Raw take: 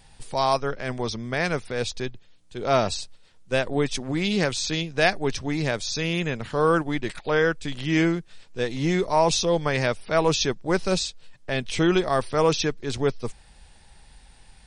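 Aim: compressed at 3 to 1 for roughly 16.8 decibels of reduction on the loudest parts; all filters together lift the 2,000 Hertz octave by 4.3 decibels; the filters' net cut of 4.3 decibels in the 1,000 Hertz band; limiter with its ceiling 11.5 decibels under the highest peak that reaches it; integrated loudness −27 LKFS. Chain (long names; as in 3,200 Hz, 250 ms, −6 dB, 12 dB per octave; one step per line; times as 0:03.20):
parametric band 1,000 Hz −8 dB
parametric band 2,000 Hz +8 dB
downward compressor 3 to 1, threshold −39 dBFS
level +17 dB
brickwall limiter −16.5 dBFS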